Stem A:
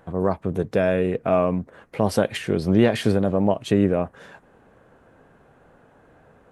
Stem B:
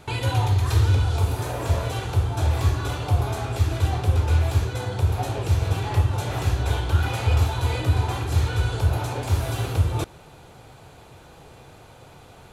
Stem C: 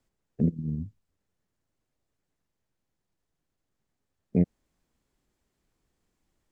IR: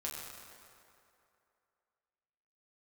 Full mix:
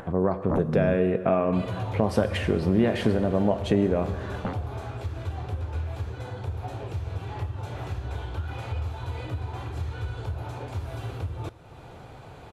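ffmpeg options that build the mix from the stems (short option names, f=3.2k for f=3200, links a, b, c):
-filter_complex "[0:a]volume=1.5dB,asplit=3[a][b][c];[b]volume=-13dB[d];[1:a]acompressor=threshold=-20dB:ratio=6,adelay=1450,volume=-8dB,asplit=2[e][f];[f]volume=-17.5dB[g];[2:a]aeval=exprs='0.299*sin(PI/2*5.01*val(0)/0.299)':c=same,adelay=100,volume=-11dB[h];[c]apad=whole_len=291940[i];[h][i]sidechaingate=range=-33dB:threshold=-51dB:ratio=16:detection=peak[j];[a][e]amix=inputs=2:normalize=0,highshelf=f=5k:g=-8.5,acompressor=threshold=-21dB:ratio=6,volume=0dB[k];[3:a]atrim=start_sample=2205[l];[d][g]amix=inputs=2:normalize=0[m];[m][l]afir=irnorm=-1:irlink=0[n];[j][k][n]amix=inputs=3:normalize=0,highshelf=f=4.4k:g=-5.5,acompressor=mode=upward:threshold=-34dB:ratio=2.5"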